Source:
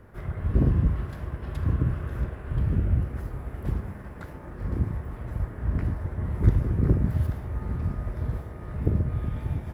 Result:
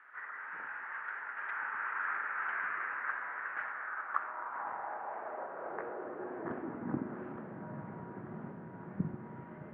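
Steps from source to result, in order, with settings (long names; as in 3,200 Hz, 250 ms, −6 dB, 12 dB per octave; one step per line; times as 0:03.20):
source passing by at 0:02.86, 15 m/s, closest 14 metres
background noise blue −67 dBFS
single-sideband voice off tune −230 Hz 310–2,300 Hz
high-pass filter sweep 1,600 Hz → 160 Hz, 0:03.76–0:07.76
level +12.5 dB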